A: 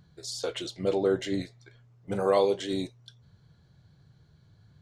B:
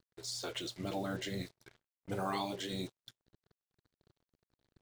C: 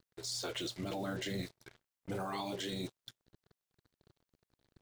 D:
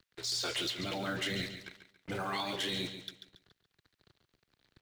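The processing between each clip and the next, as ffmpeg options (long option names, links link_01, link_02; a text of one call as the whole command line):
ffmpeg -i in.wav -af "acrusher=bits=7:mix=0:aa=0.5,afftfilt=real='re*lt(hypot(re,im),0.224)':imag='im*lt(hypot(re,im),0.224)':win_size=1024:overlap=0.75,volume=-4dB" out.wav
ffmpeg -i in.wav -af "alimiter=level_in=9dB:limit=-24dB:level=0:latency=1:release=14,volume=-9dB,volume=3dB" out.wav
ffmpeg -i in.wav -filter_complex "[0:a]aecho=1:1:140|280|420|560:0.316|0.111|0.0387|0.0136,acrossover=split=120|1400|4600[link_01][link_02][link_03][link_04];[link_03]aeval=exprs='0.0266*sin(PI/2*2.24*val(0)/0.0266)':channel_layout=same[link_05];[link_01][link_02][link_05][link_04]amix=inputs=4:normalize=0" out.wav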